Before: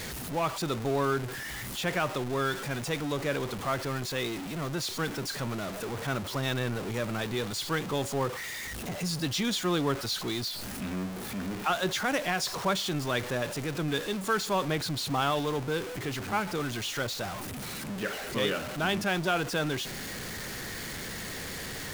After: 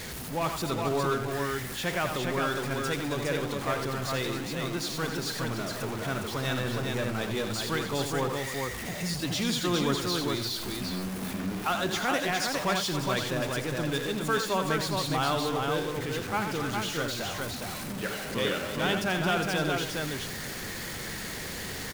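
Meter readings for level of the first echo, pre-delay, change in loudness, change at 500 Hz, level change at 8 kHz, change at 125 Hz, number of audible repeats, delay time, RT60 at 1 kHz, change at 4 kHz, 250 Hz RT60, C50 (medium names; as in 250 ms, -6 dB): -7.5 dB, no reverb, +1.5 dB, +1.5 dB, +1.0 dB, +1.0 dB, 3, 85 ms, no reverb, +1.5 dB, no reverb, no reverb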